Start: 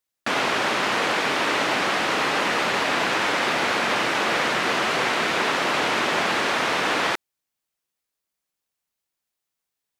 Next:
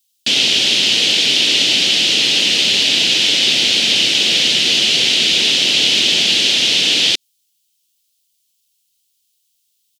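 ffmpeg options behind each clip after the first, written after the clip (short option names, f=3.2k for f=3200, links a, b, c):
-filter_complex "[0:a]acrossover=split=6900[a][b];[b]acompressor=threshold=-55dB:ratio=4:attack=1:release=60[c];[a][c]amix=inputs=2:normalize=0,firequalizer=gain_entry='entry(240,0);entry(1100,-22);entry(3000,15)':delay=0.05:min_phase=1,volume=3.5dB"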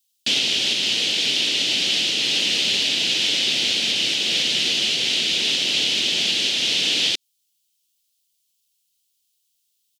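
-af "alimiter=limit=-5dB:level=0:latency=1:release=426,volume=-5dB"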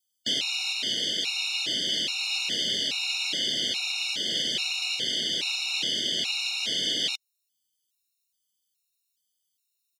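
-af "afftfilt=real='re*gt(sin(2*PI*1.2*pts/sr)*(1-2*mod(floor(b*sr/1024/730),2)),0)':imag='im*gt(sin(2*PI*1.2*pts/sr)*(1-2*mod(floor(b*sr/1024/730),2)),0)':win_size=1024:overlap=0.75,volume=-4.5dB"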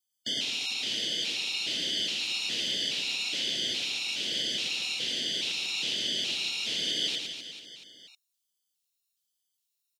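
-af "aecho=1:1:110|253|438.9|680.6|994.7:0.631|0.398|0.251|0.158|0.1,volume=-5dB"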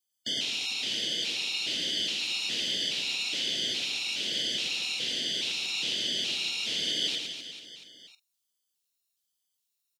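-filter_complex "[0:a]asplit=2[a][b];[b]adelay=46,volume=-13.5dB[c];[a][c]amix=inputs=2:normalize=0"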